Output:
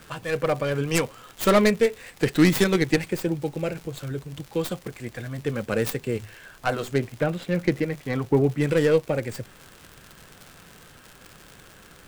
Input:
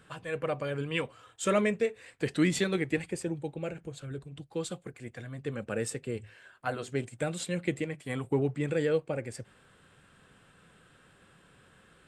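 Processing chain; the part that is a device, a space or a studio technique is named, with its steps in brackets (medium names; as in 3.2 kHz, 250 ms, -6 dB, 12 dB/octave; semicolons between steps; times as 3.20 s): 6.98–8.58 s: low-pass 2.2 kHz 12 dB/octave; record under a worn stylus (tracing distortion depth 0.32 ms; crackle 130 per s -40 dBFS; pink noise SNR 29 dB); trim +8 dB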